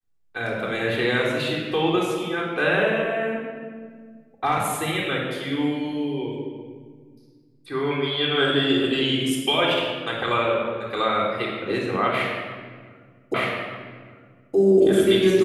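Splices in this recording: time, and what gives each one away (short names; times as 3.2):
13.34 repeat of the last 1.22 s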